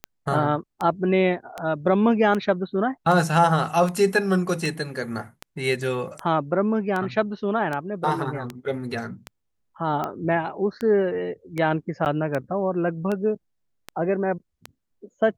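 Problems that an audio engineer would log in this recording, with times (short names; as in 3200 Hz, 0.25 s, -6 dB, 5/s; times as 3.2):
tick 78 rpm -15 dBFS
12.05–12.06 gap 9.6 ms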